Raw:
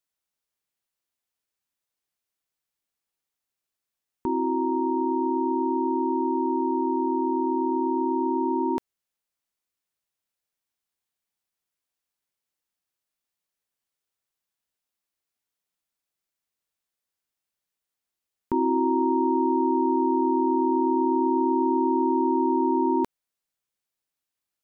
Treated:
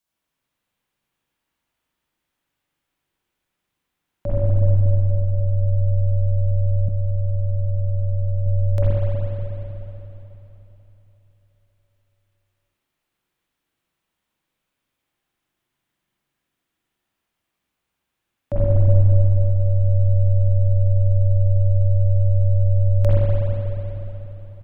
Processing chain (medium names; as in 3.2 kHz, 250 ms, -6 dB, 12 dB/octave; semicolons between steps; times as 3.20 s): delay 80 ms -15 dB; spring tank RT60 3.7 s, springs 40/46/60 ms, chirp 25 ms, DRR -9.5 dB; 6.88–8.46 s: expander -16 dBFS; frequency shift -360 Hz; trim +2.5 dB